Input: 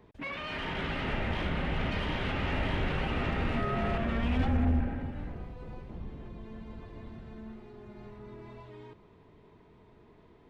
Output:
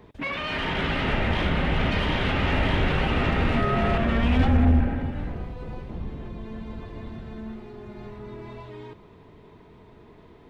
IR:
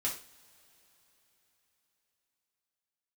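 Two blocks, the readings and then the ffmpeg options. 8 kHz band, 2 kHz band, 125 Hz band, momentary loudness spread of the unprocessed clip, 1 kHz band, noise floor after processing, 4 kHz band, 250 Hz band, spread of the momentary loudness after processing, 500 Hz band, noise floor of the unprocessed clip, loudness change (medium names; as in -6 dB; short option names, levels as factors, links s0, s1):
no reading, +8.0 dB, +8.0 dB, 18 LU, +8.0 dB, -51 dBFS, +8.5 dB, +8.0 dB, 19 LU, +8.0 dB, -59 dBFS, +8.0 dB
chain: -filter_complex "[0:a]asplit=2[s0][s1];[s1]equalizer=f=3600:w=1.5:g=14[s2];[1:a]atrim=start_sample=2205[s3];[s2][s3]afir=irnorm=-1:irlink=0,volume=0.0531[s4];[s0][s4]amix=inputs=2:normalize=0,volume=2.37"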